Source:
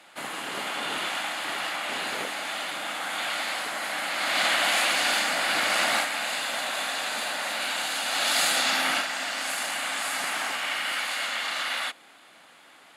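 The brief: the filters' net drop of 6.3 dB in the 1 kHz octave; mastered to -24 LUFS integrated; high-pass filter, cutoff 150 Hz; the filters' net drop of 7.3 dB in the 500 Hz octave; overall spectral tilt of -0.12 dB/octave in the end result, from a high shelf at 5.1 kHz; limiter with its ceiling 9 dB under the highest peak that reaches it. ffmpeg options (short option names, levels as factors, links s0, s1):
-af "highpass=150,equalizer=f=500:t=o:g=-7,equalizer=f=1000:t=o:g=-7,highshelf=f=5100:g=4.5,volume=1.68,alimiter=limit=0.158:level=0:latency=1"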